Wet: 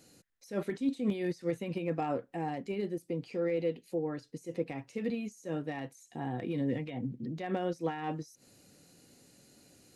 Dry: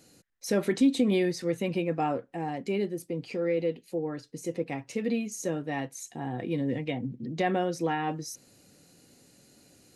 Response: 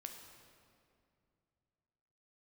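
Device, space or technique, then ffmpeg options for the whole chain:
de-esser from a sidechain: -filter_complex "[0:a]asplit=2[a][b];[b]highpass=4.8k,apad=whole_len=438935[c];[a][c]sidechaincompress=threshold=-52dB:ratio=6:attack=0.62:release=80,volume=-2dB"

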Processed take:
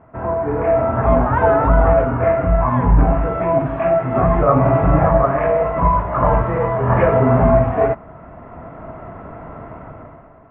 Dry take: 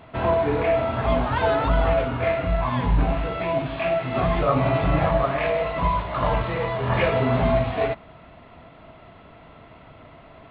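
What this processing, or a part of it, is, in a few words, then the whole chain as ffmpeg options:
action camera in a waterproof case: -af "lowpass=f=1.6k:w=0.5412,lowpass=f=1.6k:w=1.3066,dynaudnorm=f=100:g=13:m=14.5dB,volume=-1dB" -ar 32000 -c:a aac -b:a 48k

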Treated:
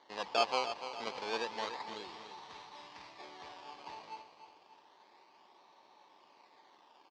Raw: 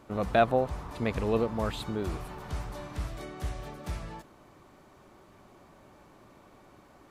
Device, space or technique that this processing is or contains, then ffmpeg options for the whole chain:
circuit-bent sampling toy: -filter_complex "[0:a]acrusher=samples=17:mix=1:aa=0.000001:lfo=1:lforange=17:lforate=0.3,highpass=570,equalizer=f=610:t=q:w=4:g=-5,equalizer=f=900:t=q:w=4:g=8,equalizer=f=1.4k:t=q:w=4:g=-9,equalizer=f=4.6k:t=q:w=4:g=4,lowpass=f=5.2k:w=0.5412,lowpass=f=5.2k:w=1.3066,asettb=1/sr,asplit=3[a][b][c];[a]atrim=end=1.934[d];[b]atrim=start=1.93:end=3.19,asetpts=PTS-STARTPTS,afade=t=in:d=0.004:c=qsin,afade=t=out:st=1.256:d=0.004:c=qsin,equalizer=f=580:t=o:w=1.8:g=-5.5[e];[c]atrim=start=3.186[f];[d][e]acrossfade=d=0.004:c1=hsin:c2=qsin[g];[g][f]acrossfade=d=0.004:c1=qsin:c2=hsin,aecho=1:1:292|584|876|1168|1460:0.299|0.137|0.0632|0.0291|0.0134,volume=-4.5dB"

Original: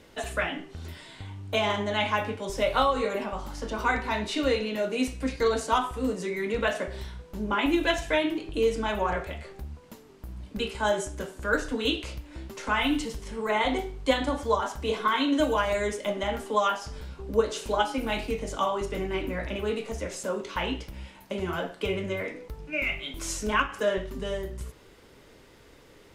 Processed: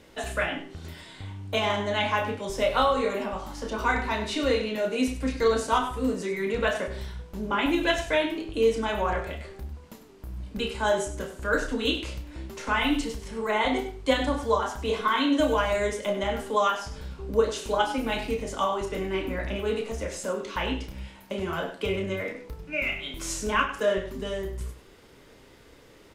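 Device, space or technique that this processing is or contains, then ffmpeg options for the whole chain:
slapback doubling: -filter_complex "[0:a]asplit=3[a][b][c];[b]adelay=31,volume=-8.5dB[d];[c]adelay=98,volume=-12dB[e];[a][d][e]amix=inputs=3:normalize=0"

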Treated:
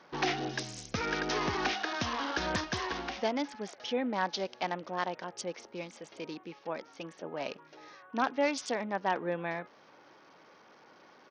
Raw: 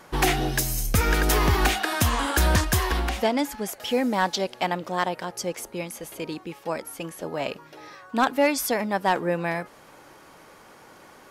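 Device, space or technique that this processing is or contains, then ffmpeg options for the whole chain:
Bluetooth headset: -af "highpass=170,aresample=16000,aresample=44100,volume=-8dB" -ar 48000 -c:a sbc -b:a 64k

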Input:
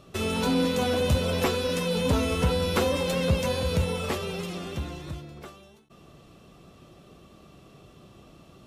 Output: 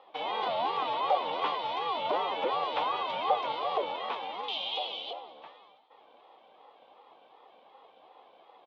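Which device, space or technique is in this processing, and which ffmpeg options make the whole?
voice changer toy: -filter_complex "[0:a]aeval=exprs='val(0)*sin(2*PI*520*n/s+520*0.3/2.7*sin(2*PI*2.7*n/s))':c=same,highpass=460,equalizer=f=490:t=q:w=4:g=5,equalizer=f=790:t=q:w=4:g=7,equalizer=f=1.1k:t=q:w=4:g=6,equalizer=f=1.7k:t=q:w=4:g=-7,equalizer=f=2.4k:t=q:w=4:g=4,equalizer=f=3.4k:t=q:w=4:g=7,lowpass=f=3.8k:w=0.5412,lowpass=f=3.8k:w=1.3066,asettb=1/sr,asplit=3[a][b][c];[a]atrim=end=4.484[d];[b]atrim=start=4.48:end=5.13,asetpts=PTS-STARTPTS,afade=t=in:d=0.004:c=qsin,afade=t=out:st=0.646:d=0.004:c=qsin,highshelf=f=2.3k:t=q:w=3:g=11[e];[c]atrim=start=5.126[f];[d][e]acrossfade=d=0.004:c1=hsin:c2=qsin[g];[g][f]acrossfade=d=0.004:c1=qsin:c2=hsin,lowpass=5.4k,asplit=5[h][i][j][k][l];[i]adelay=193,afreqshift=43,volume=-21.5dB[m];[j]adelay=386,afreqshift=86,volume=-26.7dB[n];[k]adelay=579,afreqshift=129,volume=-31.9dB[o];[l]adelay=772,afreqshift=172,volume=-37.1dB[p];[h][m][n][o][p]amix=inputs=5:normalize=0,volume=-5dB"

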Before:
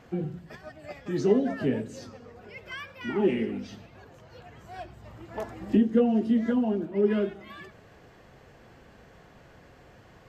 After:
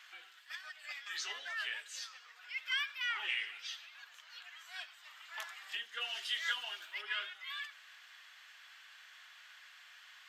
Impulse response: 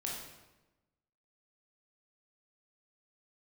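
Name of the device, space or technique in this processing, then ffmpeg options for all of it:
headphones lying on a table: -filter_complex "[0:a]highpass=f=1.4k:w=0.5412,highpass=f=1.4k:w=1.3066,equalizer=f=3.4k:t=o:w=0.55:g=7,asplit=3[a][b][c];[a]afade=t=out:st=6:d=0.02[d];[b]highshelf=f=2.1k:g=10.5,afade=t=in:st=6:d=0.02,afade=t=out:st=7.01:d=0.02[e];[c]afade=t=in:st=7.01:d=0.02[f];[d][e][f]amix=inputs=3:normalize=0,volume=3.5dB"

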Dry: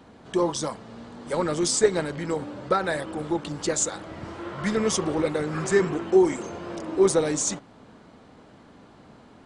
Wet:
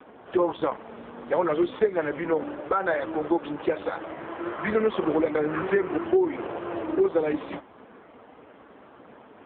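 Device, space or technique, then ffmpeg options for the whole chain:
voicemail: -af "highpass=330,lowpass=2.7k,acompressor=threshold=-25dB:ratio=8,volume=7.5dB" -ar 8000 -c:a libopencore_amrnb -b:a 5150

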